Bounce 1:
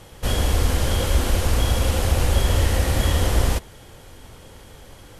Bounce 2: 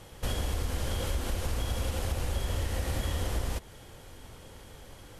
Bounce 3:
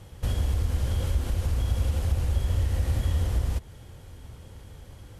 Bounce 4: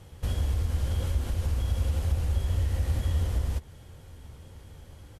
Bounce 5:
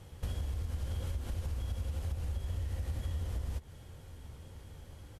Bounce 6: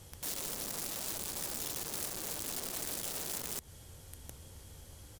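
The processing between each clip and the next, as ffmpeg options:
-af "acompressor=threshold=-23dB:ratio=4,volume=-5dB"
-af "equalizer=f=80:t=o:w=2.5:g=12,volume=-3.5dB"
-filter_complex "[0:a]asplit=2[a][b];[b]adelay=13,volume=-12dB[c];[a][c]amix=inputs=2:normalize=0,volume=-2.5dB"
-af "acompressor=threshold=-30dB:ratio=6,volume=-2.5dB"
-af "aeval=exprs='(mod(89.1*val(0)+1,2)-1)/89.1':c=same,bass=f=250:g=-2,treble=f=4k:g=12,volume=-1.5dB"

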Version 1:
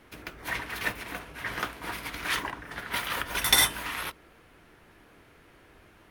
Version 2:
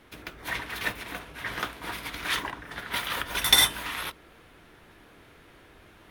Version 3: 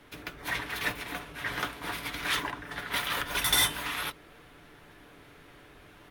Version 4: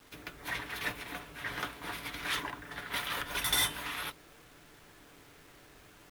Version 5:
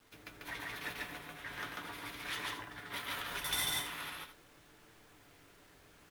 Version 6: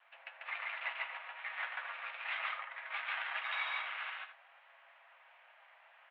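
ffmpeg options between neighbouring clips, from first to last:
-af "areverse,acompressor=mode=upward:threshold=-48dB:ratio=2.5,areverse,equalizer=f=3.6k:w=4.3:g=4.5"
-filter_complex "[0:a]aecho=1:1:6.9:0.33,acrossover=split=140[a][b];[b]asoftclip=type=tanh:threshold=-18.5dB[c];[a][c]amix=inputs=2:normalize=0"
-af "acrusher=bits=8:mix=0:aa=0.000001,volume=-4.5dB"
-filter_complex "[0:a]flanger=delay=8.9:depth=3.9:regen=68:speed=0.41:shape=sinusoidal,asplit=2[a][b];[b]aecho=0:1:142.9|221.6:0.891|0.282[c];[a][c]amix=inputs=2:normalize=0,volume=-3dB"
-af "aeval=exprs='0.0596*(cos(1*acos(clip(val(0)/0.0596,-1,1)))-cos(1*PI/2))+0.00944*(cos(6*acos(clip(val(0)/0.0596,-1,1)))-cos(6*PI/2))':c=same,highpass=f=470:t=q:w=0.5412,highpass=f=470:t=q:w=1.307,lowpass=f=2.7k:t=q:w=0.5176,lowpass=f=2.7k:t=q:w=0.7071,lowpass=f=2.7k:t=q:w=1.932,afreqshift=230,volume=3dB"

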